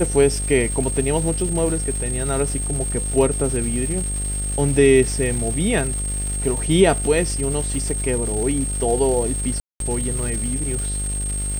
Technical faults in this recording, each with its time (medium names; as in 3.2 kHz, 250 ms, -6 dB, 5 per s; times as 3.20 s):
buzz 50 Hz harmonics 15 -26 dBFS
crackle 570 per s -28 dBFS
whine 8.5 kHz -26 dBFS
9.60–9.80 s: dropout 202 ms